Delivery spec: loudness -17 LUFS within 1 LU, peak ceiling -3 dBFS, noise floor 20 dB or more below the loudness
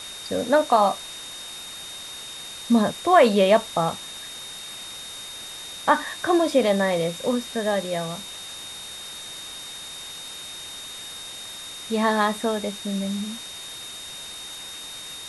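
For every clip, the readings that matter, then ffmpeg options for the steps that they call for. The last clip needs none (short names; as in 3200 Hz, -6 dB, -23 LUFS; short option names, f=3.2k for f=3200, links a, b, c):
steady tone 3700 Hz; tone level -37 dBFS; noise floor -38 dBFS; noise floor target -46 dBFS; loudness -25.5 LUFS; peak -4.5 dBFS; loudness target -17.0 LUFS
-> -af "bandreject=f=3.7k:w=30"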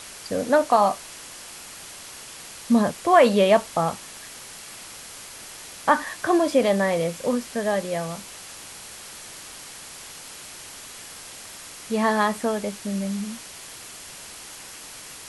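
steady tone none; noise floor -41 dBFS; noise floor target -43 dBFS
-> -af "afftdn=nr=6:nf=-41"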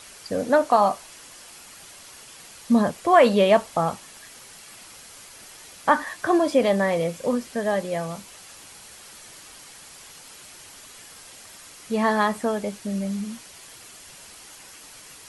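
noise floor -46 dBFS; loudness -22.5 LUFS; peak -4.5 dBFS; loudness target -17.0 LUFS
-> -af "volume=5.5dB,alimiter=limit=-3dB:level=0:latency=1"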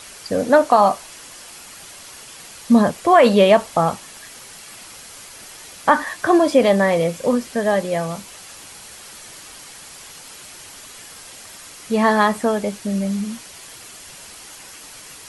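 loudness -17.5 LUFS; peak -3.0 dBFS; noise floor -40 dBFS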